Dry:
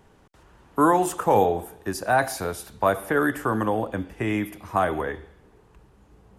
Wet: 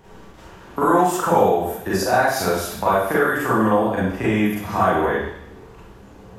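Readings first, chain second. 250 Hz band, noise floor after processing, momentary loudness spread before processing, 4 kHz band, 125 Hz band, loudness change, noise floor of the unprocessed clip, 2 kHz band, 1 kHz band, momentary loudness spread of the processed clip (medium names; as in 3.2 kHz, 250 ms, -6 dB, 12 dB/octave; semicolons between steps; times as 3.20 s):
+5.0 dB, -44 dBFS, 11 LU, +8.0 dB, +5.0 dB, +5.0 dB, -57 dBFS, +5.5 dB, +4.5 dB, 6 LU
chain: peaking EQ 9.5 kHz -8.5 dB 0.28 oct; compression 2.5:1, threshold -31 dBFS, peak gain reduction 11.5 dB; Schroeder reverb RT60 0.61 s, combs from 33 ms, DRR -8.5 dB; trim +4.5 dB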